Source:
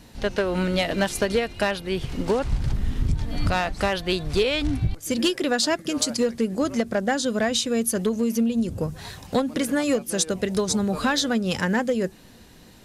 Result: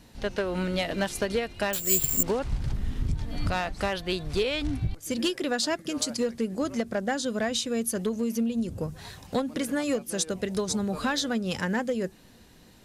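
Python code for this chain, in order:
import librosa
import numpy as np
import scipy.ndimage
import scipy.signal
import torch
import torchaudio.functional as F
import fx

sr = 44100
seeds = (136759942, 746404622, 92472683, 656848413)

y = fx.resample_bad(x, sr, factor=6, down='none', up='zero_stuff', at=(1.73, 2.23))
y = F.gain(torch.from_numpy(y), -5.0).numpy()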